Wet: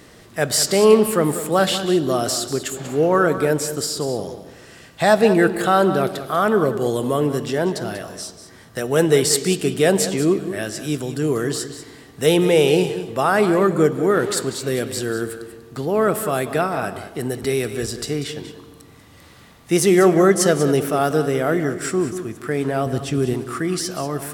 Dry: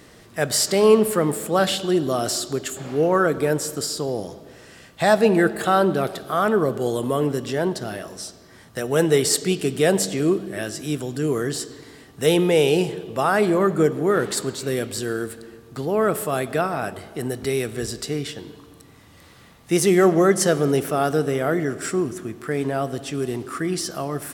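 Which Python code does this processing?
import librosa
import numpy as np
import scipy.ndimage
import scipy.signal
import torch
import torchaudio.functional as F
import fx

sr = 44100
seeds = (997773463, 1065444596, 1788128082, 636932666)

p1 = fx.low_shelf(x, sr, hz=230.0, db=9.0, at=(22.86, 23.34))
p2 = p1 + fx.echo_single(p1, sr, ms=191, db=-12.0, dry=0)
y = F.gain(torch.from_numpy(p2), 2.0).numpy()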